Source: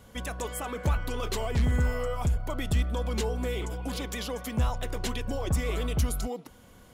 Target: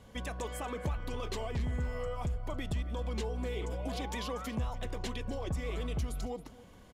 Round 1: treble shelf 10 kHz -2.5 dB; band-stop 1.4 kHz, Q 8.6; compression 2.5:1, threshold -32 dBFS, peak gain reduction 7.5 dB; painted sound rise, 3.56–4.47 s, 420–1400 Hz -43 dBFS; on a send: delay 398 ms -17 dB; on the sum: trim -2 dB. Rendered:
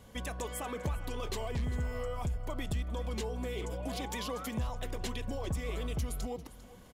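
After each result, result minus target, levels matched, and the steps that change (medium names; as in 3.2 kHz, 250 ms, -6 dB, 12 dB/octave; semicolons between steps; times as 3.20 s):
echo 125 ms late; 8 kHz band +4.0 dB
change: delay 273 ms -17 dB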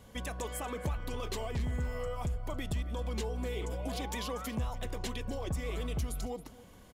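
8 kHz band +3.5 dB
change: treble shelf 10 kHz -14 dB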